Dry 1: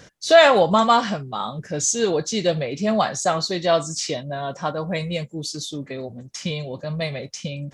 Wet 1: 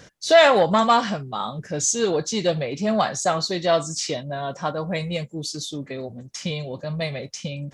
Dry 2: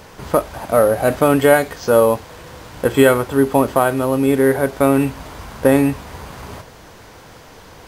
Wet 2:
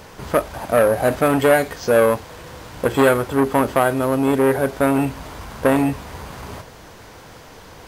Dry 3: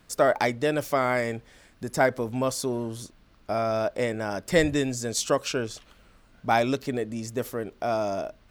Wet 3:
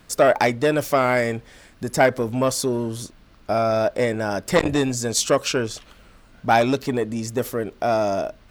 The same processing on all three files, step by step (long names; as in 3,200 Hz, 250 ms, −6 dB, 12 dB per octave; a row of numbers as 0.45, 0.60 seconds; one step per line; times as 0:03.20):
saturating transformer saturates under 890 Hz
normalise the peak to −1.5 dBFS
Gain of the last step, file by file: −0.5, 0.0, +6.5 decibels